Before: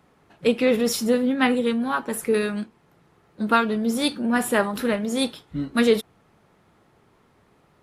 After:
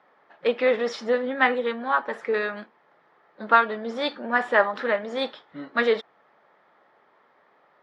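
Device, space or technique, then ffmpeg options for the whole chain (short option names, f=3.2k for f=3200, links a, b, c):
phone earpiece: -af "highpass=430,equalizer=f=580:t=q:w=4:g=5,equalizer=f=850:t=q:w=4:g=3,equalizer=f=1.2k:t=q:w=4:g=3,equalizer=f=1.8k:t=q:w=4:g=6,equalizer=f=2.7k:t=q:w=4:g=-6,equalizer=f=4.1k:t=q:w=4:g=-4,lowpass=f=4.2k:w=0.5412,lowpass=f=4.2k:w=1.3066,equalizer=f=350:t=o:w=0.77:g=-2.5"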